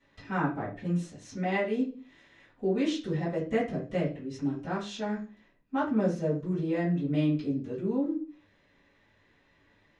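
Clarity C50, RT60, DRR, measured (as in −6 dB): 7.5 dB, 0.40 s, −13.0 dB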